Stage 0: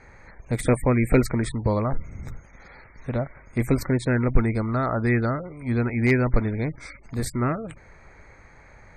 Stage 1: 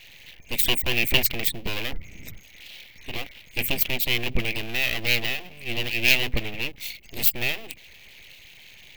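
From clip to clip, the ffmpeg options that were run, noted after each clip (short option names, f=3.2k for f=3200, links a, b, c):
-af "aeval=exprs='abs(val(0))':c=same,highshelf=f=1.9k:t=q:w=3:g=12.5,aexciter=amount=7.2:drive=4.9:freq=12k,volume=-4.5dB"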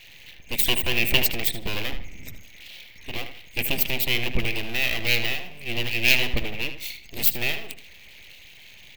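-filter_complex "[0:a]asplit=2[a][b];[b]adelay=77,lowpass=f=4.5k:p=1,volume=-9dB,asplit=2[c][d];[d]adelay=77,lowpass=f=4.5k:p=1,volume=0.33,asplit=2[e][f];[f]adelay=77,lowpass=f=4.5k:p=1,volume=0.33,asplit=2[g][h];[h]adelay=77,lowpass=f=4.5k:p=1,volume=0.33[i];[a][c][e][g][i]amix=inputs=5:normalize=0"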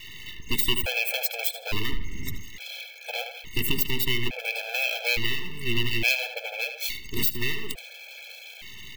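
-af "acompressor=threshold=-28dB:ratio=3,afftfilt=real='re*gt(sin(2*PI*0.58*pts/sr)*(1-2*mod(floor(b*sr/1024/440),2)),0)':imag='im*gt(sin(2*PI*0.58*pts/sr)*(1-2*mod(floor(b*sr/1024/440),2)),0)':win_size=1024:overlap=0.75,volume=8dB"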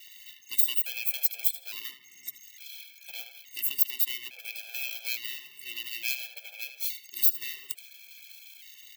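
-af "highpass=120,aderivative,volume=-2dB"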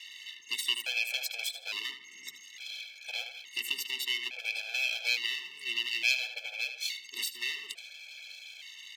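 -af "highpass=240,lowpass=4.9k,volume=7dB"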